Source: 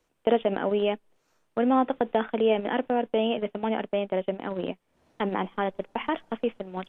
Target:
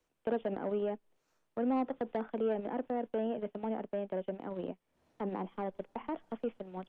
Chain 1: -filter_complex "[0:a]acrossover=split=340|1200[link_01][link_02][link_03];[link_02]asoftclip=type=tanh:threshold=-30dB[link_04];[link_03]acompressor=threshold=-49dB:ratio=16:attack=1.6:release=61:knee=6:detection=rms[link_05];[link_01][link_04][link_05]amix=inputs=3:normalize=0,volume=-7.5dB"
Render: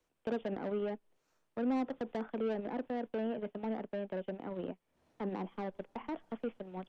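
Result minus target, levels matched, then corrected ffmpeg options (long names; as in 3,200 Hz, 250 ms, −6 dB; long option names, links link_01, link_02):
soft clipping: distortion +7 dB
-filter_complex "[0:a]acrossover=split=340|1200[link_01][link_02][link_03];[link_02]asoftclip=type=tanh:threshold=-22.5dB[link_04];[link_03]acompressor=threshold=-49dB:ratio=16:attack=1.6:release=61:knee=6:detection=rms[link_05];[link_01][link_04][link_05]amix=inputs=3:normalize=0,volume=-7.5dB"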